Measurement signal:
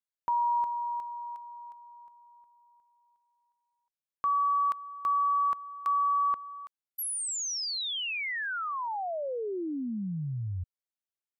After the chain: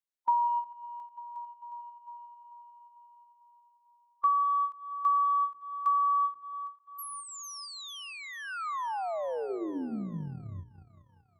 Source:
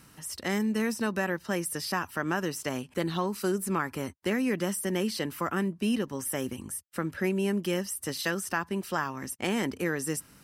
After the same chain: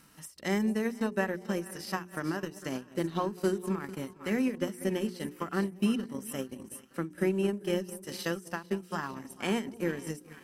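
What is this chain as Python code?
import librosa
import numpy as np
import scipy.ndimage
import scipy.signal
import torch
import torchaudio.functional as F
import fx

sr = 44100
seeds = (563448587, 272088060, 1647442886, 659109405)

y = fx.peak_eq(x, sr, hz=110.0, db=-8.5, octaves=0.69)
y = fx.hpss(y, sr, part='percussive', gain_db=-10)
y = fx.echo_split(y, sr, split_hz=820.0, low_ms=192, high_ms=447, feedback_pct=52, wet_db=-11.5)
y = fx.transient(y, sr, attack_db=5, sustain_db=-11)
y = fx.hum_notches(y, sr, base_hz=60, count=7)
y = fx.end_taper(y, sr, db_per_s=220.0)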